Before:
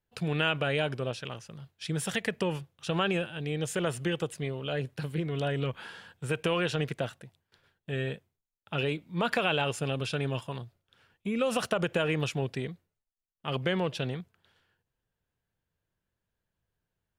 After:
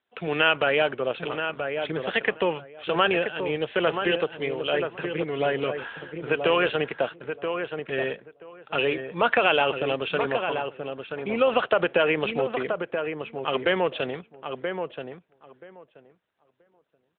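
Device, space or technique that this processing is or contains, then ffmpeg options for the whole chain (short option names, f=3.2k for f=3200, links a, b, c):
telephone: -filter_complex "[0:a]asplit=3[a][b][c];[a]afade=t=out:st=3.64:d=0.02[d];[b]adynamicequalizer=threshold=0.00447:dfrequency=2800:dqfactor=1.4:tfrequency=2800:tqfactor=1.4:attack=5:release=100:ratio=0.375:range=1.5:mode=boostabove:tftype=bell,afade=t=in:st=3.64:d=0.02,afade=t=out:st=5.22:d=0.02[e];[c]afade=t=in:st=5.22:d=0.02[f];[d][e][f]amix=inputs=3:normalize=0,highpass=370,lowpass=3.3k,asplit=2[g][h];[h]adelay=979,lowpass=f=1.8k:p=1,volume=-6dB,asplit=2[i][j];[j]adelay=979,lowpass=f=1.8k:p=1,volume=0.17,asplit=2[k][l];[l]adelay=979,lowpass=f=1.8k:p=1,volume=0.17[m];[g][i][k][m]amix=inputs=4:normalize=0,volume=9dB" -ar 8000 -c:a libopencore_amrnb -b:a 12200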